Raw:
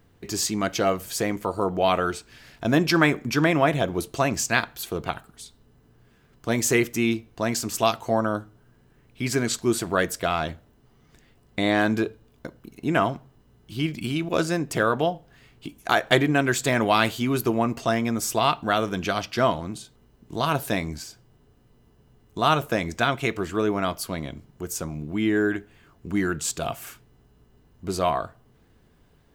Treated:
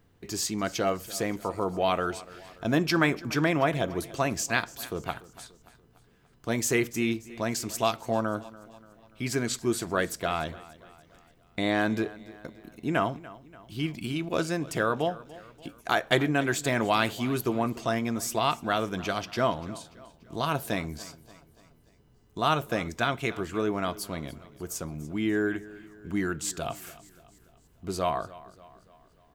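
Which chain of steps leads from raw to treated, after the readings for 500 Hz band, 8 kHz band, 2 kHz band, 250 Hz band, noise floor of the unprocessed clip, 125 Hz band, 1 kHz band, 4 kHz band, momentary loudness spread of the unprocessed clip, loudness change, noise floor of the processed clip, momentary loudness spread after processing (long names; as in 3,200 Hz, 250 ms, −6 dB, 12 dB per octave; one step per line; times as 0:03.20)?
−4.5 dB, −4.5 dB, −4.5 dB, −4.5 dB, −59 dBFS, −4.5 dB, −4.5 dB, −4.5 dB, 15 LU, −4.5 dB, −61 dBFS, 17 LU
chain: repeating echo 290 ms, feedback 50%, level −19 dB
level −4.5 dB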